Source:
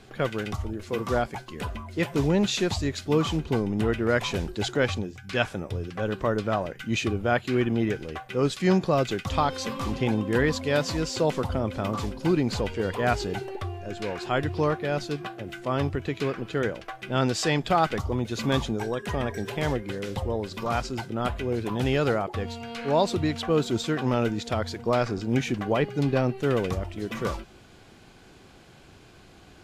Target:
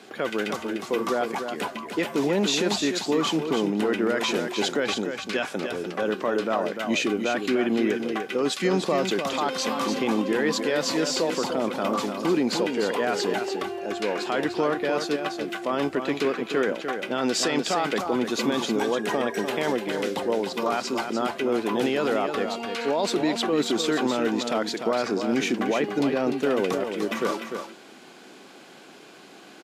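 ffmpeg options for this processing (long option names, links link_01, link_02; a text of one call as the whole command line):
ffmpeg -i in.wav -filter_complex "[0:a]highpass=frequency=220:width=0.5412,highpass=frequency=220:width=1.3066,alimiter=limit=-21dB:level=0:latency=1:release=26,asplit=2[link_01][link_02];[link_02]aecho=0:1:298:0.447[link_03];[link_01][link_03]amix=inputs=2:normalize=0,volume=5.5dB" out.wav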